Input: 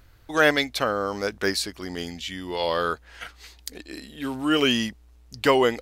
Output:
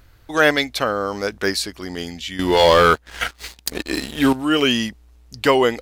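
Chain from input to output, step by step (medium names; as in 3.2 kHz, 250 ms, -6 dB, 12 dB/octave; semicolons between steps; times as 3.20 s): 2.39–4.33 s: waveshaping leveller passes 3; trim +3.5 dB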